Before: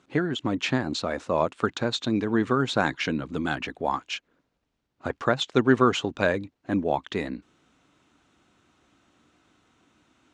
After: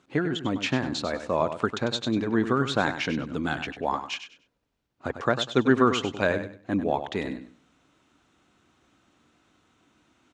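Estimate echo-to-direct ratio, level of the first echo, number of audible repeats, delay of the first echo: −9.5 dB, −10.0 dB, 3, 98 ms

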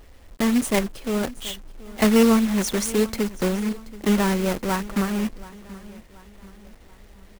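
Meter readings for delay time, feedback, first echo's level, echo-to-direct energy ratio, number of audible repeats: 729 ms, 45%, −19.0 dB, −18.0 dB, 3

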